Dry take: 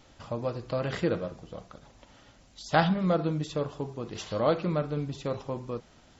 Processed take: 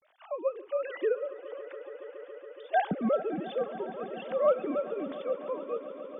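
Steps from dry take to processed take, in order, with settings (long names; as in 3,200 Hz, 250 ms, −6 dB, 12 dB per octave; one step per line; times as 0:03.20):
three sine waves on the formant tracks
treble cut that deepens with the level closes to 2,600 Hz, closed at −24.5 dBFS
on a send: echo that builds up and dies away 140 ms, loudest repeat 5, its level −18 dB
on the sum: level −2 dB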